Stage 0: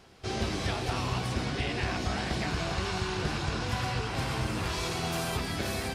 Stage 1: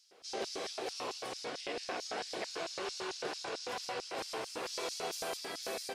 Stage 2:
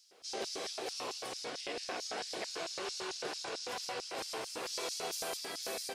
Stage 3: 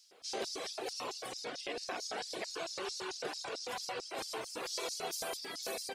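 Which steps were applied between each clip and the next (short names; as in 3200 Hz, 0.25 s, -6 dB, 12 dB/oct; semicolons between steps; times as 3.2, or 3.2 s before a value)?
LFO high-pass square 4.5 Hz 460–5200 Hz; gain -6.5 dB
high shelf 4500 Hz +6 dB; gain -1.5 dB
reverb removal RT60 1.8 s; gain +1.5 dB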